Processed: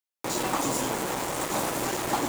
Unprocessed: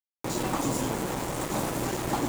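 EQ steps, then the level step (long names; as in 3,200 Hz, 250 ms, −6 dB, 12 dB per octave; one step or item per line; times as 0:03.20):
low-shelf EQ 270 Hz −11.5 dB
+4.0 dB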